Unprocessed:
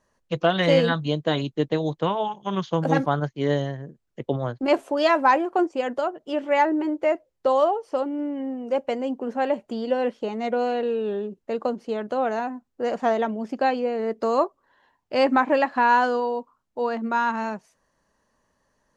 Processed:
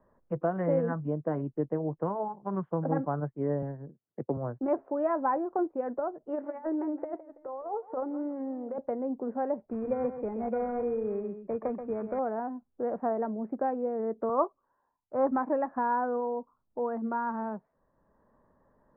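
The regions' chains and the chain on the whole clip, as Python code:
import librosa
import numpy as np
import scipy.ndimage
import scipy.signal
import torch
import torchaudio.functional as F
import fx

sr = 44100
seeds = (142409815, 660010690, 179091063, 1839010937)

y = fx.chain(x, sr, fx.highpass(hz=96.0, slope=24),
    fx.transient(attack_db=1, sustain_db=-6),
    fx.doppler_dist(depth_ms=0.25), at=(3.62, 4.37))
y = fx.chain(y, sr, fx.low_shelf(hz=320.0, db=-10.5),
    fx.over_compress(threshold_db=-27.0, ratio=-0.5),
    fx.echo_warbled(ms=165, feedback_pct=33, rate_hz=2.8, cents=159, wet_db=-15.5), at=(6.26, 8.78))
y = fx.chain(y, sr, fx.echo_single(ms=130, db=-10.0),
    fx.sample_hold(seeds[0], rate_hz=2900.0, jitter_pct=0), at=(9.65, 12.19))
y = fx.chain(y, sr, fx.lowpass_res(hz=1300.0, q=2.4),
    fx.band_widen(depth_pct=70), at=(14.29, 15.31))
y = scipy.signal.sosfilt(scipy.signal.bessel(8, 930.0, 'lowpass', norm='mag', fs=sr, output='sos'), y)
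y = fx.band_squash(y, sr, depth_pct=40)
y = F.gain(torch.from_numpy(y), -6.0).numpy()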